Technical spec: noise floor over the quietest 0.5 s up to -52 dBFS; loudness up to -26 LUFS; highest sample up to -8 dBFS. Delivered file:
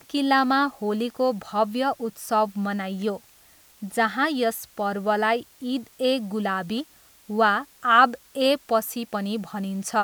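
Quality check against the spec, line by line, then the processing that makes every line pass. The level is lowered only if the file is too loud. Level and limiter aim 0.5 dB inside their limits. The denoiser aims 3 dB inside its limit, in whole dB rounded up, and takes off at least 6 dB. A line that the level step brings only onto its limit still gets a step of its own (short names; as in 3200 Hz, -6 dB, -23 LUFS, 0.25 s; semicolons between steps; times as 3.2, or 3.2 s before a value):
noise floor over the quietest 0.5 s -55 dBFS: OK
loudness -24.0 LUFS: fail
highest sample -4.5 dBFS: fail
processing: gain -2.5 dB; limiter -8.5 dBFS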